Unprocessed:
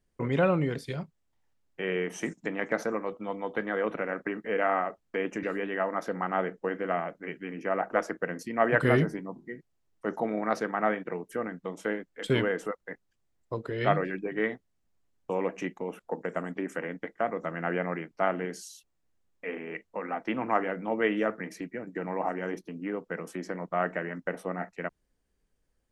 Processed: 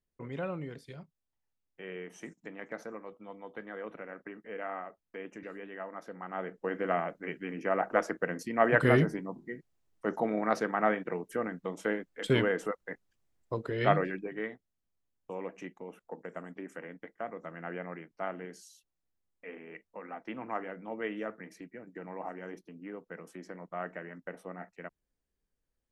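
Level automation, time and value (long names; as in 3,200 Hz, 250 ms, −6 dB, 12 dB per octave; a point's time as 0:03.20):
0:06.20 −12 dB
0:06.81 −0.5 dB
0:14.01 −0.5 dB
0:14.51 −9.5 dB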